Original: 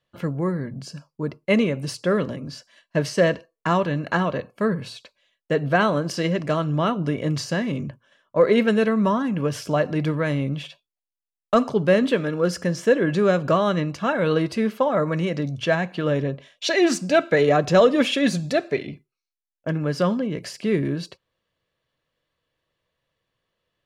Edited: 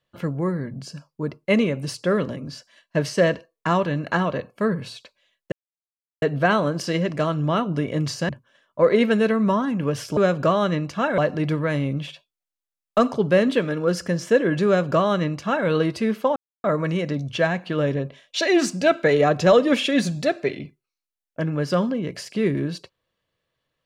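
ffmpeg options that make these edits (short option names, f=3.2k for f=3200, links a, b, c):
-filter_complex "[0:a]asplit=6[a][b][c][d][e][f];[a]atrim=end=5.52,asetpts=PTS-STARTPTS,afade=t=out:st=5.516:d=0.004:c=hsin,apad=pad_dur=0.7[g];[b]atrim=start=5.52:end=7.592,asetpts=PTS-STARTPTS,afade=t=in:d=0.004:c=hsin[h];[c]atrim=start=7.858:end=9.742[i];[d]atrim=start=13.218:end=14.232[j];[e]atrim=start=9.738:end=14.92,asetpts=PTS-STARTPTS,afade=t=out:st=5.178:d=0.004:c=hsin,apad=pad_dur=0.28[k];[f]atrim=start=14.92,asetpts=PTS-STARTPTS,afade=t=in:d=0.004:c=hsin[l];[g][h]concat=n=2:v=0:a=1[m];[m][i]acrossfade=d=0.004:c1=hsin:c2=hsin[n];[n][j]acrossfade=d=0.004:c1=hsin:c2=hsin[o];[k][l]concat=n=2:v=0:a=1[p];[o][p]acrossfade=d=0.004:c1=hsin:c2=hsin"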